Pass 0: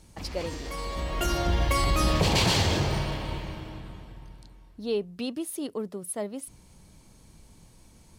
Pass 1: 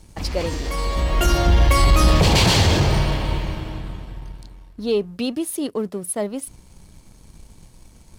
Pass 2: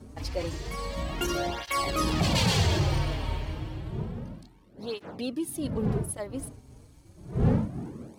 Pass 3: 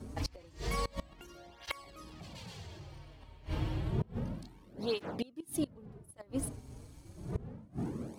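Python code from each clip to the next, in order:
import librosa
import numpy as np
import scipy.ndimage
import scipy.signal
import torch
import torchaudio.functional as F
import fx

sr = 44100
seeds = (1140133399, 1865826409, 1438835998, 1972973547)

y1 = fx.leveller(x, sr, passes=1)
y1 = fx.low_shelf(y1, sr, hz=65.0, db=7.5)
y1 = y1 * librosa.db_to_amplitude(4.0)
y2 = fx.dmg_wind(y1, sr, seeds[0], corner_hz=220.0, level_db=-26.0)
y2 = fx.flanger_cancel(y2, sr, hz=0.3, depth_ms=6.1)
y2 = y2 * librosa.db_to_amplitude(-6.0)
y3 = fx.gate_flip(y2, sr, shuts_db=-23.0, range_db=-25)
y3 = y3 * librosa.db_to_amplitude(1.0)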